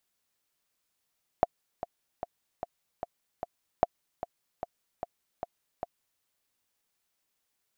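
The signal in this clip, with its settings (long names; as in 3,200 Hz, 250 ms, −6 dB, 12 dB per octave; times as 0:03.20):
click track 150 BPM, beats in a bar 6, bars 2, 697 Hz, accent 13 dB −8 dBFS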